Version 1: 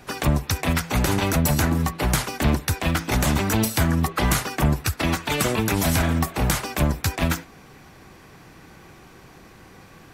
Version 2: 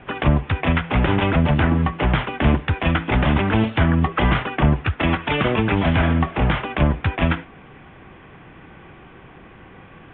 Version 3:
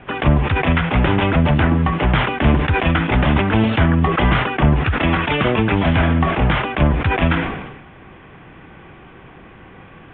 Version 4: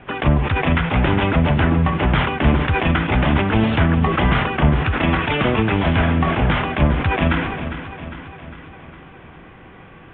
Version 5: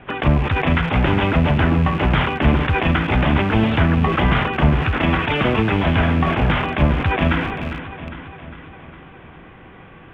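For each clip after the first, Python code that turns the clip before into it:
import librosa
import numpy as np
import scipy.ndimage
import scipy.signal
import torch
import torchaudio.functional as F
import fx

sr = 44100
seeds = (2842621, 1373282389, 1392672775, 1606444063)

y1 = scipy.signal.sosfilt(scipy.signal.butter(16, 3400.0, 'lowpass', fs=sr, output='sos'), x)
y1 = F.gain(torch.from_numpy(y1), 3.5).numpy()
y2 = fx.sustainer(y1, sr, db_per_s=51.0)
y2 = F.gain(torch.from_numpy(y2), 2.0).numpy()
y3 = fx.echo_feedback(y2, sr, ms=404, feedback_pct=57, wet_db=-11.5)
y3 = F.gain(torch.from_numpy(y3), -1.5).numpy()
y4 = fx.rattle_buzz(y3, sr, strikes_db=-26.0, level_db=-24.0)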